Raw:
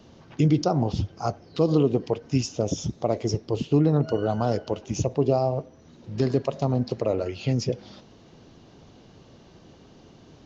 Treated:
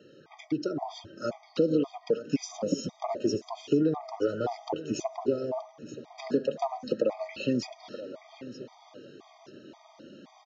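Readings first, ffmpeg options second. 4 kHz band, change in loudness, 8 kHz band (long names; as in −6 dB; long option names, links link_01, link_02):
−4.0 dB, −5.5 dB, can't be measured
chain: -filter_complex "[0:a]lowshelf=frequency=210:gain=-7,flanger=delay=2.2:depth=2:regen=-30:speed=0.23:shape=triangular,acompressor=threshold=-30dB:ratio=6,aemphasis=mode=reproduction:type=cd,asplit=2[link_01][link_02];[link_02]aecho=0:1:926|1852|2778:0.178|0.0498|0.0139[link_03];[link_01][link_03]amix=inputs=2:normalize=0,aeval=exprs='val(0)+0.000794*(sin(2*PI*50*n/s)+sin(2*PI*2*50*n/s)/2+sin(2*PI*3*50*n/s)/3+sin(2*PI*4*50*n/s)/4+sin(2*PI*5*50*n/s)/5)':channel_layout=same,highpass=frequency=150:width=0.5412,highpass=frequency=150:width=1.3066,dynaudnorm=framelen=160:gausssize=11:maxgain=4dB,afftfilt=real='re*gt(sin(2*PI*1.9*pts/sr)*(1-2*mod(floor(b*sr/1024/630),2)),0)':imag='im*gt(sin(2*PI*1.9*pts/sr)*(1-2*mod(floor(b*sr/1024/630),2)),0)':win_size=1024:overlap=0.75,volume=5dB"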